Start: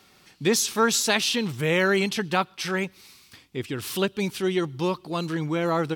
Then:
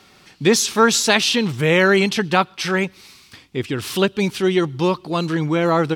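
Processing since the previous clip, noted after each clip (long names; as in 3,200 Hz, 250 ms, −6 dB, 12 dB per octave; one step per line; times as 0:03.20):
high-shelf EQ 11,000 Hz −11 dB
level +7 dB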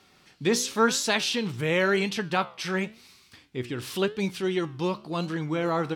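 flanger 0.94 Hz, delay 9.9 ms, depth 7.5 ms, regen +79%
level −4.5 dB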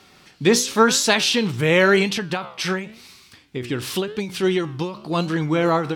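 every ending faded ahead of time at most 110 dB per second
level +8 dB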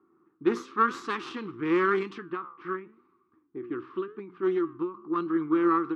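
harmonic generator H 4 −12 dB, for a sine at −2.5 dBFS
low-pass that shuts in the quiet parts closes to 730 Hz, open at −12.5 dBFS
pair of resonant band-passes 630 Hz, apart 1.8 octaves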